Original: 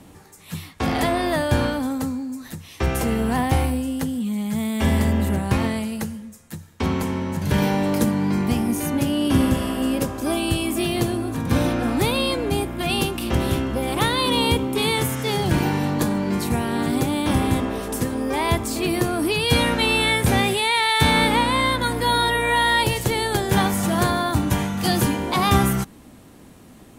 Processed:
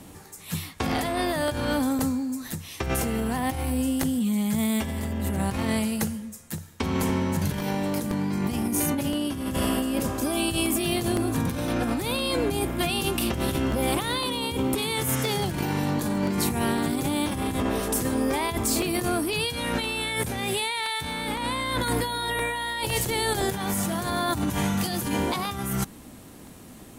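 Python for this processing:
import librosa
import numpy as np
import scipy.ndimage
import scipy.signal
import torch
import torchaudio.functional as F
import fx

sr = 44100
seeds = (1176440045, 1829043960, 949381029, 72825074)

y = fx.high_shelf(x, sr, hz=5400.0, db=6.0)
y = fx.over_compress(y, sr, threshold_db=-24.0, ratio=-1.0)
y = fx.buffer_crackle(y, sr, first_s=0.46, period_s=0.51, block=64, kind='repeat')
y = y * librosa.db_to_amplitude(-2.5)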